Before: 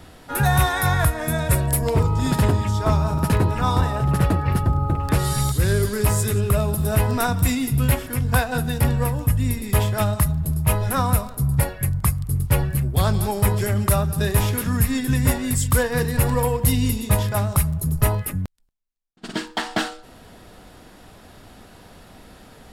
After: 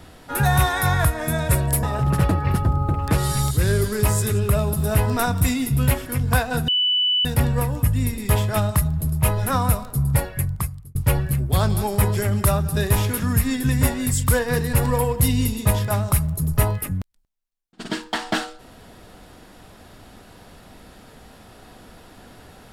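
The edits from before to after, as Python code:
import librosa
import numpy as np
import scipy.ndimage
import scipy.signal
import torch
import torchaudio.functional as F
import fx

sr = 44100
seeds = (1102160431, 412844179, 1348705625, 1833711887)

y = fx.edit(x, sr, fx.cut(start_s=1.83, length_s=2.01),
    fx.insert_tone(at_s=8.69, length_s=0.57, hz=2980.0, db=-16.5),
    fx.fade_out_span(start_s=11.79, length_s=0.6), tone=tone)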